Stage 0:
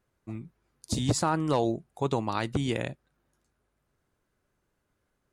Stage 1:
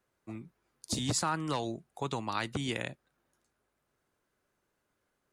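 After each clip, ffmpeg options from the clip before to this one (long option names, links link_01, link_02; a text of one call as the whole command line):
ffmpeg -i in.wav -filter_complex "[0:a]lowshelf=frequency=170:gain=-11,acrossover=split=240|1000[link_01][link_02][link_03];[link_02]acompressor=threshold=-38dB:ratio=6[link_04];[link_01][link_04][link_03]amix=inputs=3:normalize=0" out.wav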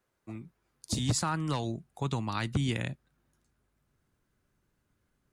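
ffmpeg -i in.wav -af "asubboost=boost=4.5:cutoff=240" out.wav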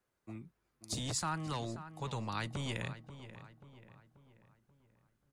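ffmpeg -i in.wav -filter_complex "[0:a]acrossover=split=460|5300[link_01][link_02][link_03];[link_01]asoftclip=type=hard:threshold=-33.5dB[link_04];[link_04][link_02][link_03]amix=inputs=3:normalize=0,asplit=2[link_05][link_06];[link_06]adelay=535,lowpass=frequency=2800:poles=1,volume=-12.5dB,asplit=2[link_07][link_08];[link_08]adelay=535,lowpass=frequency=2800:poles=1,volume=0.48,asplit=2[link_09][link_10];[link_10]adelay=535,lowpass=frequency=2800:poles=1,volume=0.48,asplit=2[link_11][link_12];[link_12]adelay=535,lowpass=frequency=2800:poles=1,volume=0.48,asplit=2[link_13][link_14];[link_14]adelay=535,lowpass=frequency=2800:poles=1,volume=0.48[link_15];[link_05][link_07][link_09][link_11][link_13][link_15]amix=inputs=6:normalize=0,volume=-4.5dB" out.wav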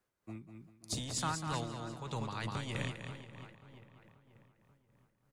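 ffmpeg -i in.wav -af "aecho=1:1:196|392|588|784:0.596|0.179|0.0536|0.0161,tremolo=f=3.2:d=0.49,volume=1dB" out.wav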